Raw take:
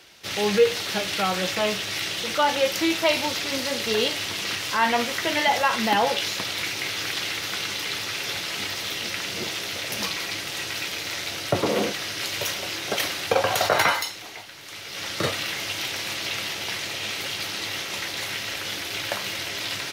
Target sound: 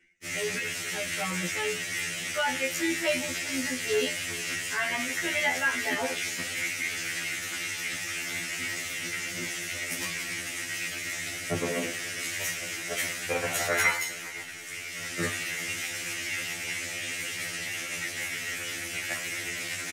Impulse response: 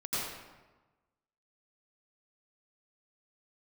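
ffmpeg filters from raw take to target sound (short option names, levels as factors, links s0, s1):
-af "equalizer=f=125:t=o:w=1:g=4,equalizer=f=250:t=o:w=1:g=5,equalizer=f=1000:t=o:w=1:g=-8,equalizer=f=2000:t=o:w=1:g=10,equalizer=f=4000:t=o:w=1:g=-10,equalizer=f=8000:t=o:w=1:g=12,anlmdn=0.158,areverse,acompressor=mode=upward:threshold=0.0562:ratio=2.5,areverse,aecho=1:1:409:0.0841,afftfilt=real='re*2*eq(mod(b,4),0)':imag='im*2*eq(mod(b,4),0)':win_size=2048:overlap=0.75,volume=0.596"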